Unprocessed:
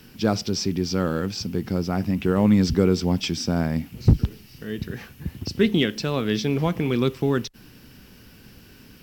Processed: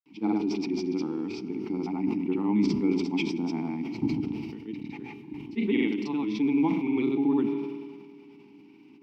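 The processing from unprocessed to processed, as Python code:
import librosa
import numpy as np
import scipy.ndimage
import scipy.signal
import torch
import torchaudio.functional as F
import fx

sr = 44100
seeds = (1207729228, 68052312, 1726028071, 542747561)

y = scipy.signal.sosfilt(scipy.signal.butter(2, 130.0, 'highpass', fs=sr, output='sos'), x)
y = fx.granulator(y, sr, seeds[0], grain_ms=100.0, per_s=20.0, spray_ms=100.0, spread_st=0)
y = fx.vowel_filter(y, sr, vowel='u')
y = fx.rev_fdn(y, sr, rt60_s=3.6, lf_ratio=1.0, hf_ratio=0.95, size_ms=15.0, drr_db=13.0)
y = fx.sustainer(y, sr, db_per_s=36.0)
y = F.gain(torch.from_numpy(y), 6.5).numpy()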